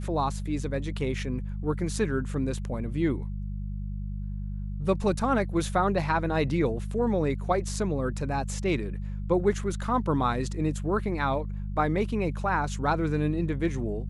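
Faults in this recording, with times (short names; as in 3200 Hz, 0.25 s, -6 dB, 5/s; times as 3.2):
hum 50 Hz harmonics 4 -33 dBFS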